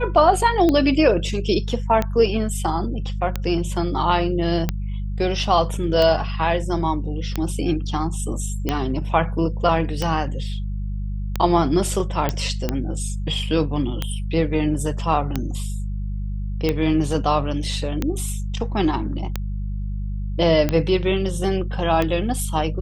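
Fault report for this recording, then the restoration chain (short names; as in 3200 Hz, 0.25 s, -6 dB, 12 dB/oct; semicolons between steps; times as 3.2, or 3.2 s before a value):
hum 50 Hz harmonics 4 -26 dBFS
tick 45 rpm -8 dBFS
12.29 pop -8 dBFS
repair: de-click; de-hum 50 Hz, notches 4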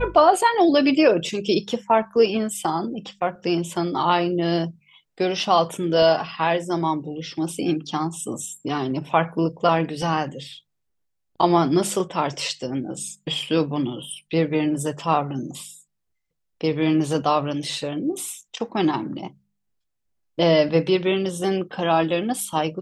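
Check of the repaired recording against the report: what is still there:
none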